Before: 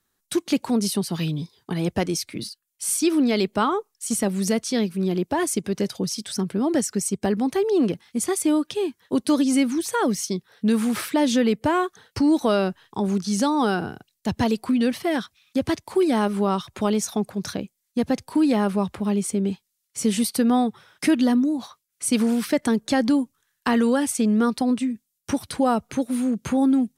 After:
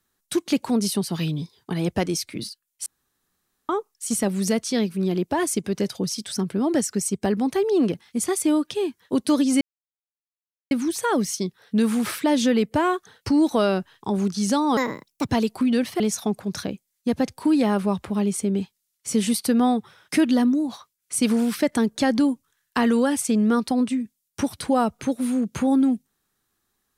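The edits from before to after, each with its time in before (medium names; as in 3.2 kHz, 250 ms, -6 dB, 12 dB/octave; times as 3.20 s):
2.86–3.69 s: room tone
9.61 s: insert silence 1.10 s
13.67–14.37 s: speed 135%
15.08–16.90 s: delete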